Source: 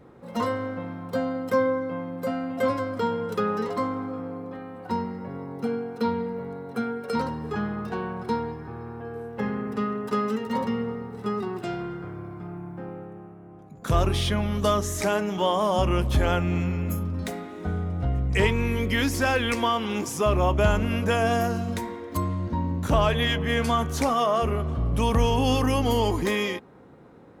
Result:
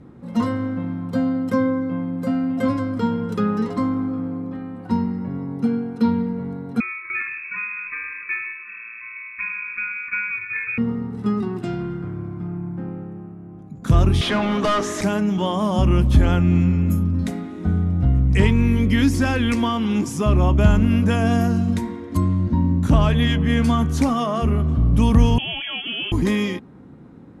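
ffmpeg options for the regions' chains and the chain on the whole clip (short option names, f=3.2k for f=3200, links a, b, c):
-filter_complex "[0:a]asettb=1/sr,asplit=3[a][b][c];[a]atrim=end=6.804[d];[b]atrim=start=6.8:end=10.78,asetpts=PTS-STARTPTS,afade=t=in:d=0.004:c=qsin,afade=t=out:st=3.976:d=0.004:c=qsin,lowpass=f=2.3k:t=q:w=0.5098,lowpass=f=2.3k:t=q:w=0.6013,lowpass=f=2.3k:t=q:w=0.9,lowpass=f=2.3k:t=q:w=2.563,afreqshift=-2700,asuperstop=centerf=690:order=20:qfactor=1.3,aecho=1:1:166:0.158,atrim=end_sample=175518[e];[c]atrim=start=10.776[f];[d][e]acrossfade=d=0.004:c1=hsin:c2=qsin[g];[g][f]acrossfade=d=0.004:c1=qsin:c2=hsin,asettb=1/sr,asplit=3[h][i][j];[h]atrim=end=14.214[k];[i]atrim=start=14.21:end=15.01,asetpts=PTS-STARTPTS,afade=t=in:d=0.004:c=qsin,afade=t=out:st=0.796:d=0.004:c=qsin,highpass=320,aemphasis=mode=reproduction:type=cd,asplit=2[l][m];[m]highpass=f=720:p=1,volume=23dB,asoftclip=type=tanh:threshold=-12dB[n];[l][n]amix=inputs=2:normalize=0,lowpass=f=2.6k:p=1,volume=-6dB[o];[j]atrim=start=15.006[p];[k][o]acrossfade=d=0.004:c1=hsin:c2=qsin[q];[q][p]acrossfade=d=0.004:c1=qsin:c2=hsin,asettb=1/sr,asplit=3[r][s][t];[r]atrim=end=25.384[u];[s]atrim=start=25.38:end=26.12,asetpts=PTS-STARTPTS,afade=t=in:d=0.004:c=qsin,afade=t=out:st=0.736:d=0.004:c=qsin,highpass=f=630:p=1,lowpass=f=3k:t=q:w=0.5098,lowpass=f=3k:t=q:w=0.6013,lowpass=f=3k:t=q:w=0.9,lowpass=f=3k:t=q:w=2.563,afreqshift=-3500[v];[t]atrim=start=26.116[w];[u][v]acrossfade=d=0.004:c1=hsin:c2=qsin[x];[x][w]acrossfade=d=0.004:c1=qsin:c2=hsin,lowpass=f=12k:w=0.5412,lowpass=f=12k:w=1.3066,lowshelf=f=350:t=q:w=1.5:g=8"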